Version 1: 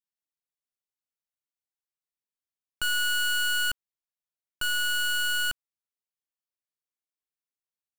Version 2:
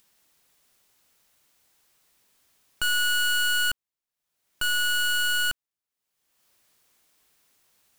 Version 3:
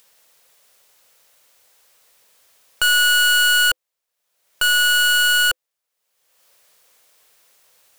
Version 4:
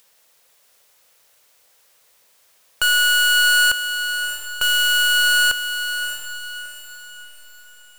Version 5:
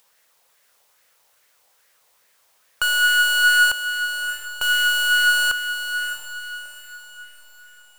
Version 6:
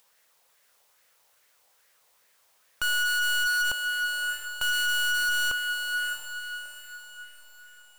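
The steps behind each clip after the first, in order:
upward compression, threshold −48 dBFS; level +2.5 dB
drawn EQ curve 330 Hz 0 dB, 510 Hz +14 dB, 750 Hz +9 dB
feedback delay with all-pass diffusion 658 ms, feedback 41%, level −8.5 dB; level −1 dB
auto-filter bell 2.4 Hz 810–1,900 Hz +8 dB; level −4.5 dB
hard clipping −20.5 dBFS, distortion −8 dB; level −3.5 dB

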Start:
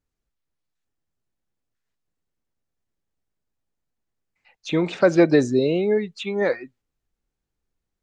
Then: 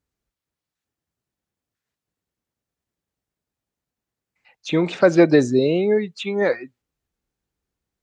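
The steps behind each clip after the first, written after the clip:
high-pass filter 51 Hz
level +2 dB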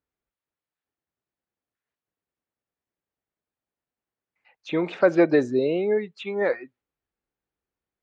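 bass and treble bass −8 dB, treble −14 dB
level −3 dB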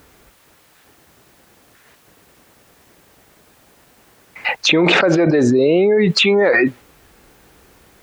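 envelope flattener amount 100%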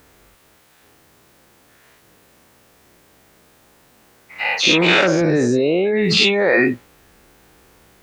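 every bin's largest magnitude spread in time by 120 ms
level −6.5 dB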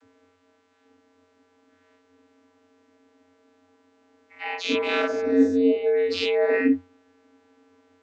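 channel vocoder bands 32, square 90.1 Hz
level −5 dB

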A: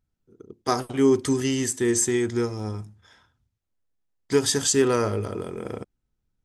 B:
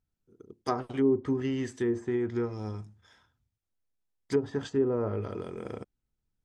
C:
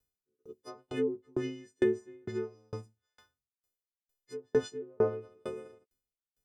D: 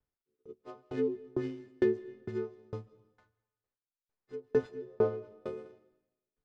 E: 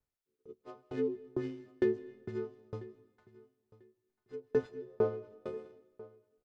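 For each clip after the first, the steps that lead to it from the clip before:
treble cut that deepens with the level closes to 630 Hz, closed at −16.5 dBFS; level −5.5 dB
every partial snapped to a pitch grid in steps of 3 semitones; parametric band 450 Hz +10.5 dB 0.65 octaves; tremolo with a ramp in dB decaying 2.2 Hz, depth 39 dB
running median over 15 samples; high-frequency loss of the air 98 metres; comb and all-pass reverb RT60 1 s, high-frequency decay 0.95×, pre-delay 105 ms, DRR 20 dB
repeating echo 993 ms, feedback 20%, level −20.5 dB; level −2 dB

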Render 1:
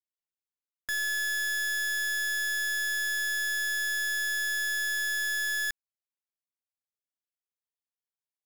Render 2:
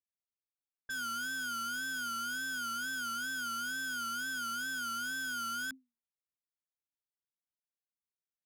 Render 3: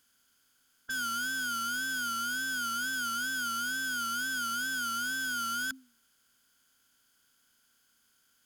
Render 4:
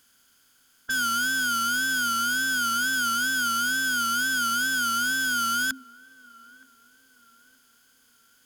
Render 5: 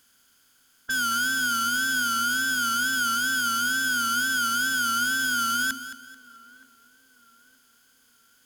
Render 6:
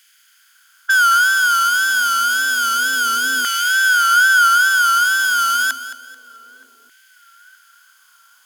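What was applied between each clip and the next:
frequency shifter −250 Hz; tape wow and flutter 110 cents; low-pass that shuts in the quiet parts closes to 470 Hz, open at −31.5 dBFS; level −7.5 dB
compressor on every frequency bin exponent 0.6; level +3 dB
feedback echo with a band-pass in the loop 921 ms, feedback 63%, band-pass 550 Hz, level −20 dB; level +8 dB
feedback echo at a low word length 218 ms, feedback 35%, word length 9 bits, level −12.5 dB
auto-filter high-pass saw down 0.29 Hz 380–2,100 Hz; level +6.5 dB

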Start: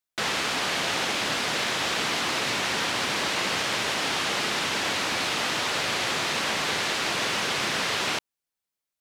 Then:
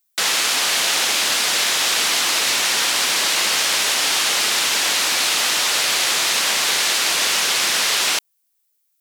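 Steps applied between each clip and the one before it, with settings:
RIAA equalisation recording
level +3.5 dB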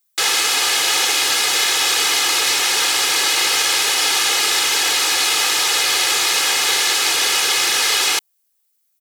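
comb filter 2.4 ms, depth 68%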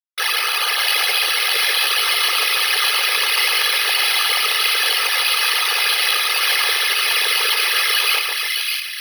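spectral envelope exaggerated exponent 3
bad sample-rate conversion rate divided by 6×, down filtered, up hold
echo with a time of its own for lows and highs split 1,700 Hz, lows 142 ms, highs 609 ms, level −3 dB

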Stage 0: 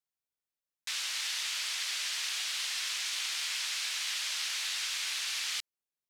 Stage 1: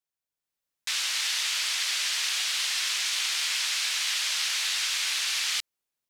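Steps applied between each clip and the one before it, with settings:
automatic gain control gain up to 6.5 dB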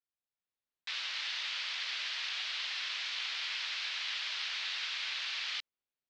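low-pass filter 4,400 Hz 24 dB per octave
level −7 dB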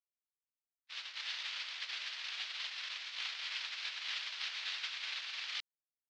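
noise gate −35 dBFS, range −53 dB
level +6.5 dB

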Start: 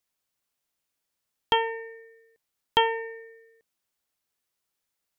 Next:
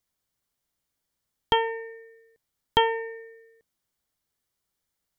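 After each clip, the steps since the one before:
low-shelf EQ 210 Hz +10 dB
notch filter 2,600 Hz, Q 9.2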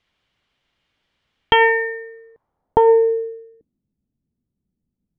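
in parallel at −0.5 dB: compressor whose output falls as the input rises −26 dBFS, ratio −0.5
on the sum: low-pass filter sweep 2,900 Hz → 220 Hz, 0:01.38–0:03.86
level +5 dB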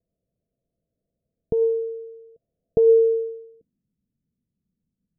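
Chebyshev low-pass with heavy ripple 690 Hz, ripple 6 dB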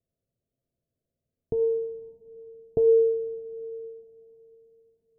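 coupled-rooms reverb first 0.21 s, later 4.2 s, from −20 dB, DRR 7.5 dB
level −5 dB

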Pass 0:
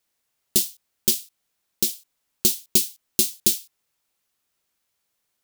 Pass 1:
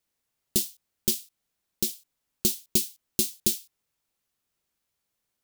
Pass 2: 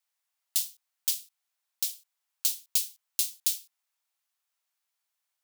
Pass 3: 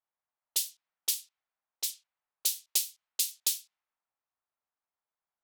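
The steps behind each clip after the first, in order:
low-shelf EQ 350 Hz +6.5 dB; level −5.5 dB
high-pass filter 720 Hz 24 dB per octave; level −2 dB
low-pass that shuts in the quiet parts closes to 1,100 Hz, open at −27 dBFS; level +1 dB

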